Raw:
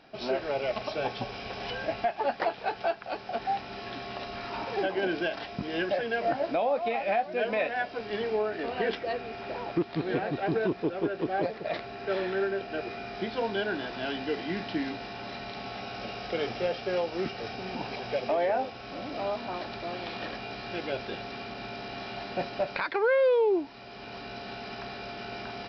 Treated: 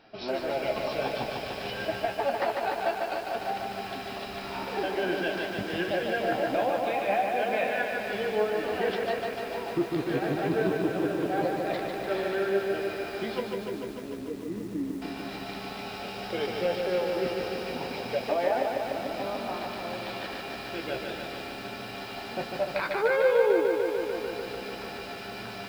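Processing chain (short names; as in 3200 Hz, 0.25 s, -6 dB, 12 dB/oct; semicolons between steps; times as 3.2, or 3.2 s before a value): 13.4–15.02 running mean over 58 samples; flange 0.55 Hz, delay 8.7 ms, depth 7.2 ms, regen +45%; lo-fi delay 0.148 s, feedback 80%, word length 9-bit, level -4 dB; gain +3 dB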